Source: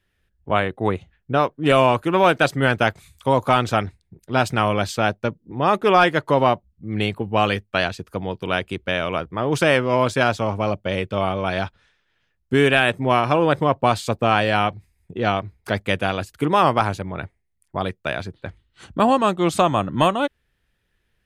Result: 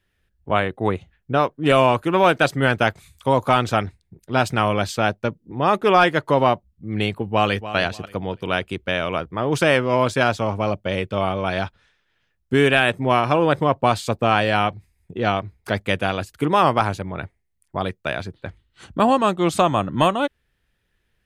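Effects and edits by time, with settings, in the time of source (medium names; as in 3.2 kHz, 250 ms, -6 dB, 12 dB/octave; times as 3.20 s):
7.24–7.76 s: echo throw 290 ms, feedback 25%, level -13 dB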